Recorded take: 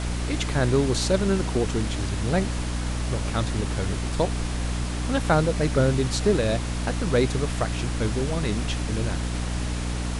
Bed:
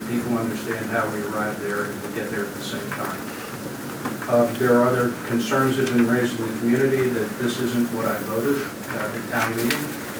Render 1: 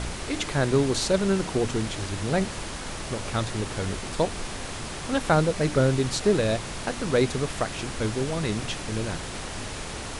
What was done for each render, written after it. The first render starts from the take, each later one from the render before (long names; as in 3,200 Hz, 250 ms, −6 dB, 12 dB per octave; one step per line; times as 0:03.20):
hum removal 60 Hz, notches 5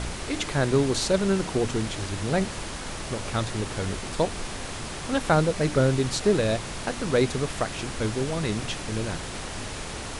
no processing that can be heard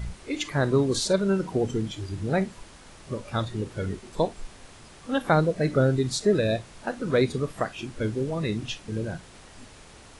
noise reduction from a noise print 14 dB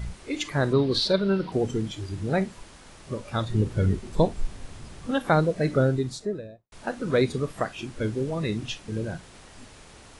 0:00.73–0:01.52: high shelf with overshoot 5,500 Hz −9 dB, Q 3
0:03.49–0:05.11: low-shelf EQ 240 Hz +11.5 dB
0:05.72–0:06.72: fade out and dull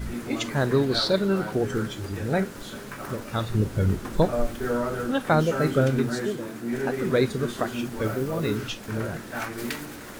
mix in bed −9.5 dB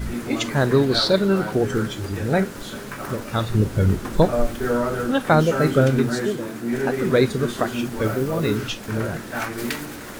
level +4.5 dB